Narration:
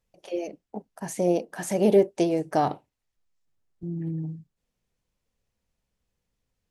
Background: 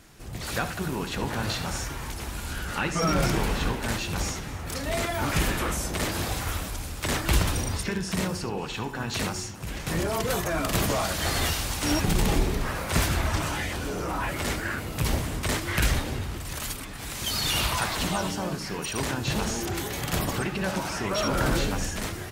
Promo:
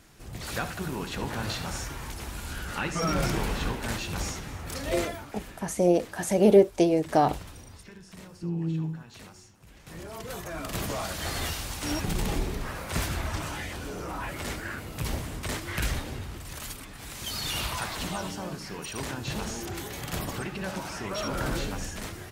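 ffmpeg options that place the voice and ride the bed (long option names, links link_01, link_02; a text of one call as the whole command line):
ffmpeg -i stem1.wav -i stem2.wav -filter_complex "[0:a]adelay=4600,volume=1.5dB[link_01];[1:a]volume=10dB,afade=type=out:start_time=4.99:duration=0.26:silence=0.16788,afade=type=in:start_time=9.76:duration=1.33:silence=0.223872[link_02];[link_01][link_02]amix=inputs=2:normalize=0" out.wav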